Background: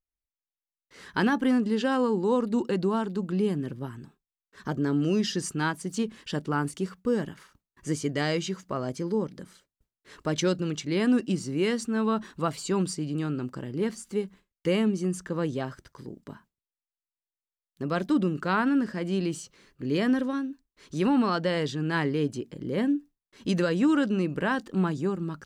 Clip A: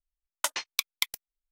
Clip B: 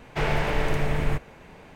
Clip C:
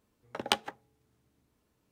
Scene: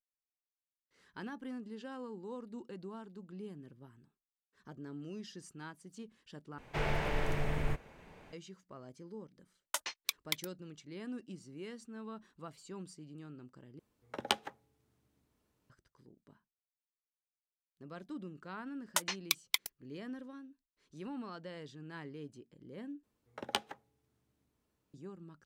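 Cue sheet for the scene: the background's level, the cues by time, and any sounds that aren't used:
background -20 dB
6.58 s: replace with B -9 dB
9.30 s: add A -7.5 dB
13.79 s: replace with C -4 dB
18.52 s: add A -4 dB
23.03 s: replace with C -6.5 dB

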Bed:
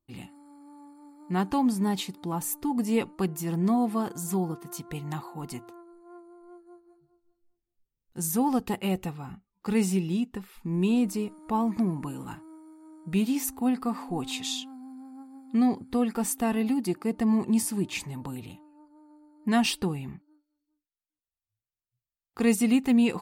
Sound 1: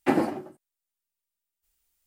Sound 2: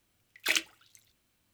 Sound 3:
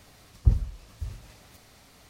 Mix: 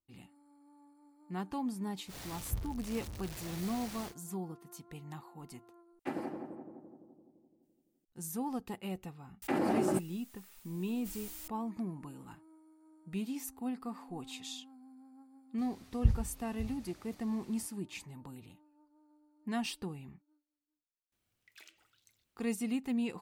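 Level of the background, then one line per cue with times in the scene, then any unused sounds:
bed -12 dB
2.06 s: add 3 -17.5 dB, fades 0.10 s + jump at every zero crossing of -23.5 dBFS
5.99 s: replace with 1 -15.5 dB + filtered feedback delay 170 ms, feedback 67%, low-pass 1.1 kHz, level -4 dB
9.42 s: add 1 -12 dB + level flattener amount 100%
15.58 s: add 3 -6 dB
21.12 s: add 2 -9.5 dB + compression 10:1, threshold -43 dBFS

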